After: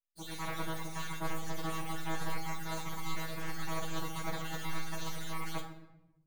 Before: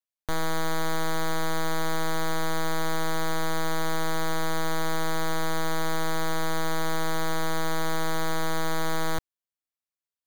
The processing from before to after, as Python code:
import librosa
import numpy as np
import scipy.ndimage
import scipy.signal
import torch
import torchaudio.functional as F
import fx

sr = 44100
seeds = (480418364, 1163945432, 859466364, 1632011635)

y = fx.spec_dropout(x, sr, seeds[0], share_pct=68)
y = fx.low_shelf(y, sr, hz=93.0, db=-8.5)
y = np.maximum(y, 0.0)
y = fx.stretch_vocoder_free(y, sr, factor=0.61)
y = fx.room_shoebox(y, sr, seeds[1], volume_m3=340.0, walls='mixed', distance_m=0.77)
y = F.gain(torch.from_numpy(y), 1.5).numpy()